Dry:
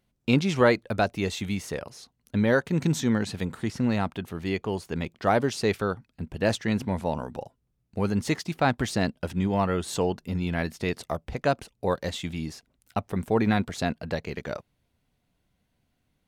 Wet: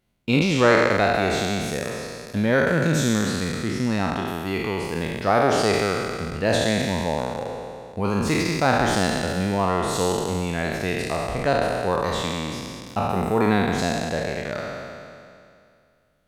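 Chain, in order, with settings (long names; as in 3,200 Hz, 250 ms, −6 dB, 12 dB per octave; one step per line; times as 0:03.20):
peak hold with a decay on every bin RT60 2.35 s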